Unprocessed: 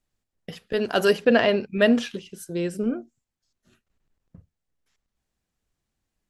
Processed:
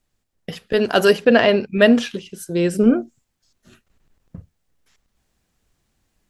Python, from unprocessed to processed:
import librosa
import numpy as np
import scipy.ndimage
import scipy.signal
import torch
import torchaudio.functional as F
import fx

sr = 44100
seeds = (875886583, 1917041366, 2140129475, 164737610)

y = fx.rider(x, sr, range_db=10, speed_s=0.5)
y = y * librosa.db_to_amplitude(7.5)